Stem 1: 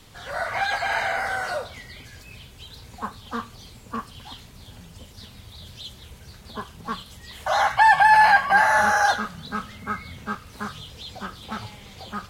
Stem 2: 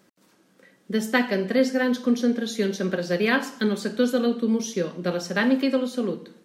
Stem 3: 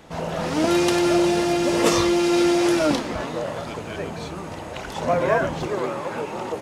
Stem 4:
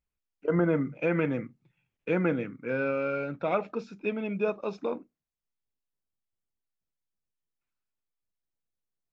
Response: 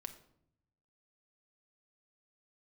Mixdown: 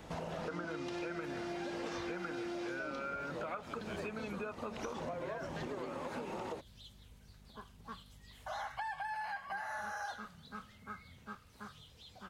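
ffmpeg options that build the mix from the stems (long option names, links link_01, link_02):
-filter_complex "[0:a]adelay=1000,volume=-17.5dB[link_01];[1:a]acompressor=threshold=-27dB:ratio=6,adelay=200,volume=-9dB[link_02];[2:a]acrossover=split=6100[link_03][link_04];[link_04]acompressor=threshold=-52dB:ratio=4:attack=1:release=60[link_05];[link_03][link_05]amix=inputs=2:normalize=0,volume=-5dB[link_06];[3:a]equalizer=frequency=1400:width=1.3:gain=14,volume=-0.5dB[link_07];[link_02][link_06][link_07]amix=inputs=3:normalize=0,aeval=exprs='val(0)+0.00112*(sin(2*PI*50*n/s)+sin(2*PI*2*50*n/s)/2+sin(2*PI*3*50*n/s)/3+sin(2*PI*4*50*n/s)/4+sin(2*PI*5*50*n/s)/5)':channel_layout=same,acompressor=threshold=-35dB:ratio=2.5,volume=0dB[link_08];[link_01][link_08]amix=inputs=2:normalize=0,acompressor=threshold=-38dB:ratio=6"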